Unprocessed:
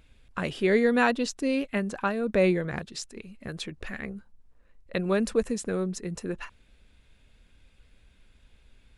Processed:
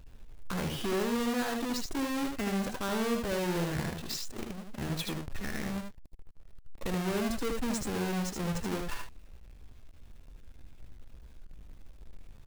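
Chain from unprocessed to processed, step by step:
each half-wave held at its own peak
low-shelf EQ 63 Hz +7.5 dB
downward compressor 4 to 1, threshold −22 dBFS, peak gain reduction 7.5 dB
brickwall limiter −25.5 dBFS, peak gain reduction 22 dB
tempo change 0.72×
ambience of single reflections 64 ms −16 dB, 77 ms −4 dB
level −2.5 dB

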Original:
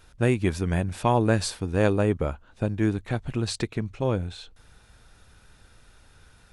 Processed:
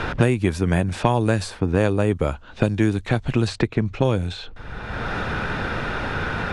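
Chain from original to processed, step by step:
low-pass that shuts in the quiet parts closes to 2,600 Hz, open at −20 dBFS
multiband upward and downward compressor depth 100%
level +4.5 dB

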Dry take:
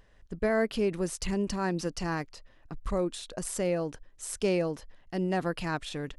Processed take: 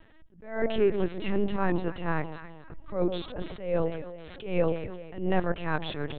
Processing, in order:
delay that swaps between a low-pass and a high-pass 134 ms, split 890 Hz, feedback 59%, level −9 dB
linear-prediction vocoder at 8 kHz pitch kept
level that may rise only so fast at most 110 dB per second
level +4.5 dB

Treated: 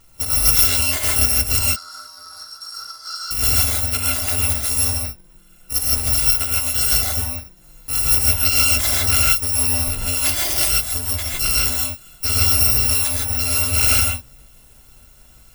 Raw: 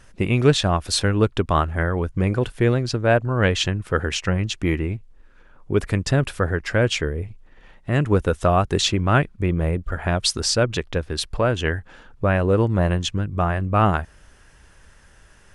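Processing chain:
samples in bit-reversed order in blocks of 256 samples
0:01.59–0:03.31: pair of resonant band-passes 2,500 Hz, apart 1.8 octaves
reverb whose tail is shaped and stops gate 180 ms rising, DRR −4 dB
level −2.5 dB

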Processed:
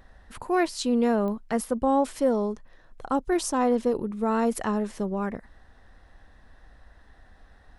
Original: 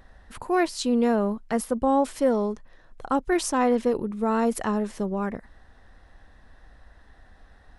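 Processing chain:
0:02.12–0:03.98: dynamic equaliser 2,100 Hz, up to −5 dB, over −43 dBFS, Q 1.2
digital clicks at 0:01.28, −23 dBFS
level −1 dB

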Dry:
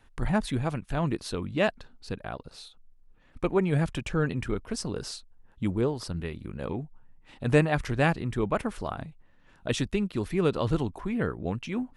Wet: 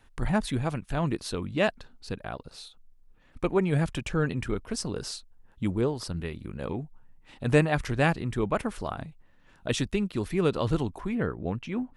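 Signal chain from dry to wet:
high-shelf EQ 4,100 Hz +2.5 dB, from 0:11.15 −8.5 dB

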